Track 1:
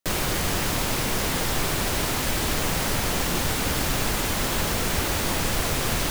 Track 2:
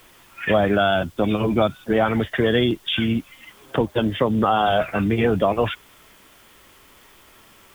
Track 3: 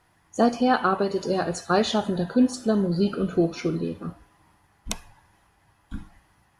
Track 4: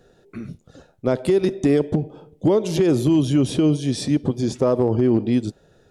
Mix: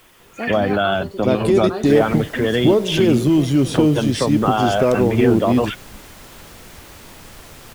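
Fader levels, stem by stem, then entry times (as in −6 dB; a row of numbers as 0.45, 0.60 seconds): −16.0, 0.0, −8.5, +2.0 decibels; 1.80, 0.00, 0.00, 0.20 seconds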